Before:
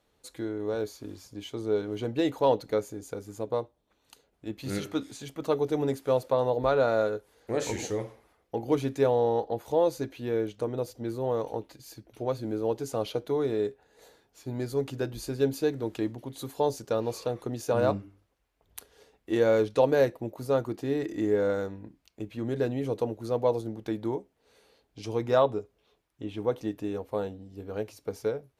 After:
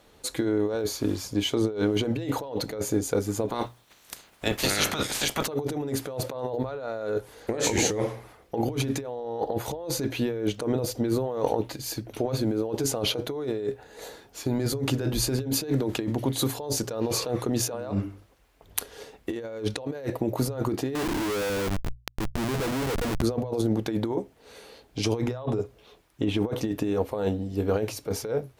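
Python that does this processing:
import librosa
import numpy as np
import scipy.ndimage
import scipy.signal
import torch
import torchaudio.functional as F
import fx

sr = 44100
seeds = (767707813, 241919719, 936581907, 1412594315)

y = fx.spec_clip(x, sr, under_db=22, at=(3.48, 5.46), fade=0.02)
y = fx.schmitt(y, sr, flips_db=-39.0, at=(20.95, 23.22))
y = fx.over_compress(y, sr, threshold_db=-36.0, ratio=-1.0)
y = fx.hum_notches(y, sr, base_hz=60, count=2)
y = y * librosa.db_to_amplitude(8.0)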